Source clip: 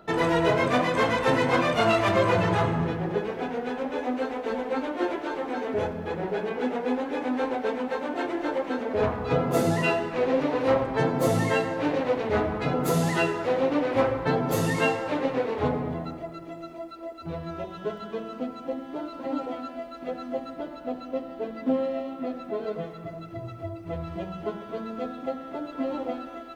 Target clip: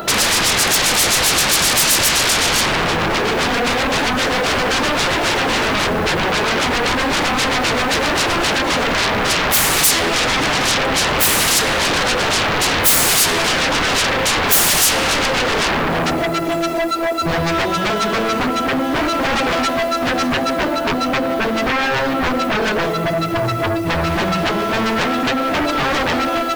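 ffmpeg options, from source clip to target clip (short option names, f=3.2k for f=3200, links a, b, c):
-af "lowshelf=f=250:g=-6.5,acompressor=threshold=-31dB:ratio=2,aeval=exprs='0.126*sin(PI/2*7.94*val(0)/0.126)':c=same,crystalizer=i=1.5:c=0,volume=3dB"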